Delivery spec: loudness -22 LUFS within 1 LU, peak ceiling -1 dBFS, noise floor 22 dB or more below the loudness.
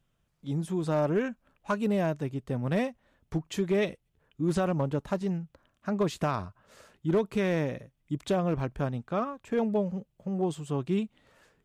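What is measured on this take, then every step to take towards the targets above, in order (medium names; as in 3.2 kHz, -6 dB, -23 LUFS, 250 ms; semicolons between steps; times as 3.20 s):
clipped samples 0.6%; clipping level -19.5 dBFS; loudness -30.5 LUFS; peak level -19.5 dBFS; loudness target -22.0 LUFS
-> clip repair -19.5 dBFS; trim +8.5 dB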